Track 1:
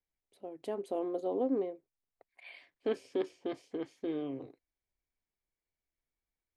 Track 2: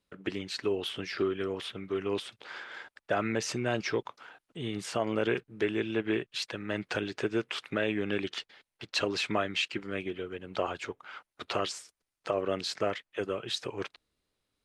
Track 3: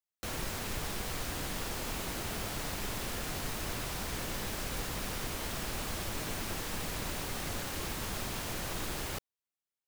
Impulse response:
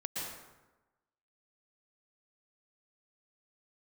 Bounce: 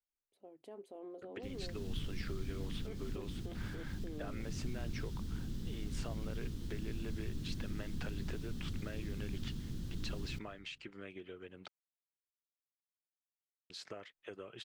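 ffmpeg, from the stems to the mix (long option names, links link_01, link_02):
-filter_complex "[0:a]alimiter=level_in=5.5dB:limit=-24dB:level=0:latency=1:release=23,volume=-5.5dB,volume=-11.5dB,asplit=2[link_01][link_02];[1:a]acompressor=threshold=-33dB:ratio=12,adelay=1100,volume=-10dB,asplit=3[link_03][link_04][link_05];[link_03]atrim=end=11.68,asetpts=PTS-STARTPTS,afade=type=out:start_time=11.676:duration=0.004:curve=hsin[link_06];[link_04]atrim=start=11.68:end=13.7,asetpts=PTS-STARTPTS,volume=0[link_07];[link_05]atrim=start=13.7,asetpts=PTS-STARTPTS,afade=type=in:duration=0.004:curve=hsin[link_08];[link_06][link_07][link_08]concat=n=3:v=0:a=1[link_09];[2:a]firequalizer=gain_entry='entry(230,0);entry(620,-29);entry(1600,-23);entry(2300,-27);entry(3300,-15);entry(9800,-23)':delay=0.05:min_phase=1,adelay=1200,volume=-0.5dB,asplit=2[link_10][link_11];[link_11]volume=-16dB[link_12];[link_02]apad=whole_len=492681[link_13];[link_10][link_13]sidechaincompress=threshold=-51dB:ratio=8:attack=16:release=177[link_14];[3:a]atrim=start_sample=2205[link_15];[link_12][link_15]afir=irnorm=-1:irlink=0[link_16];[link_01][link_09][link_14][link_16]amix=inputs=4:normalize=0"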